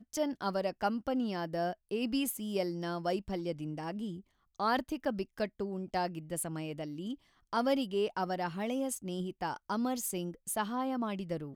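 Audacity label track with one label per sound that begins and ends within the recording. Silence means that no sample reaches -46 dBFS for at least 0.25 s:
4.600000	7.150000	sound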